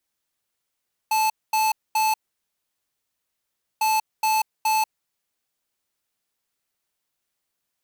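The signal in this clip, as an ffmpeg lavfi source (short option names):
-f lavfi -i "aevalsrc='0.0944*(2*lt(mod(872*t,1),0.5)-1)*clip(min(mod(mod(t,2.7),0.42),0.19-mod(mod(t,2.7),0.42))/0.005,0,1)*lt(mod(t,2.7),1.26)':d=5.4:s=44100"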